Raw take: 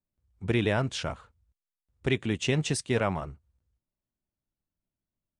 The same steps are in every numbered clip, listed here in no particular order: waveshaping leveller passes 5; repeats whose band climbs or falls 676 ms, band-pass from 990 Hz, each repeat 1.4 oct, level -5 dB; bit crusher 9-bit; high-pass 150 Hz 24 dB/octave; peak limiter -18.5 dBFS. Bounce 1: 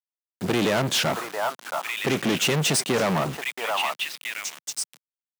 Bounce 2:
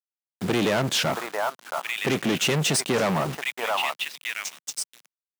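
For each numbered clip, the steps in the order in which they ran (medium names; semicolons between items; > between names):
peak limiter > repeats whose band climbs or falls > bit crusher > waveshaping leveller > high-pass; repeats whose band climbs or falls > bit crusher > waveshaping leveller > peak limiter > high-pass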